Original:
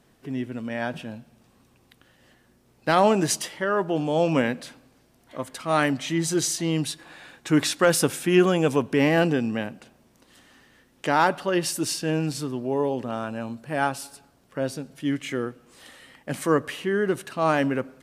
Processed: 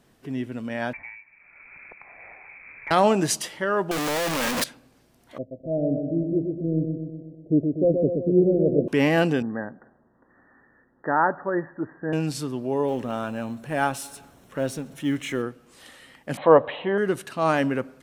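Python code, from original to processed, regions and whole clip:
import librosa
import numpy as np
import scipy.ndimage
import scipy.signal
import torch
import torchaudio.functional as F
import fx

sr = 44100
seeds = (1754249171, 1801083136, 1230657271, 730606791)

y = fx.chain(x, sr, fx.freq_invert(carrier_hz=2500),
    fx.band_squash(depth_pct=100), at=(0.93, 2.91))
y = fx.chain(y, sr, fx.clip_1bit(),
    fx.low_shelf(hz=430.0, db=-10.5),
    fx.leveller(passes=1), at=(3.91, 4.64))
y = fx.chain(y, sr, fx.law_mismatch(coded='A'),
    fx.steep_lowpass(hz=660.0, slope=96),
    fx.echo_feedback(ms=124, feedback_pct=60, wet_db=-5), at=(5.38, 8.88))
y = fx.chain(y, sr, fx.cheby1_lowpass(hz=1900.0, order=10),
    fx.low_shelf(hz=230.0, db=-5.5), at=(9.42, 12.13))
y = fx.chain(y, sr, fx.law_mismatch(coded='mu'),
    fx.notch(hz=4700.0, q=5.8), at=(12.88, 15.42))
y = fx.chain(y, sr, fx.cheby1_lowpass(hz=4000.0, order=8),
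    fx.band_shelf(hz=710.0, db=14.5, octaves=1.2), at=(16.37, 16.98))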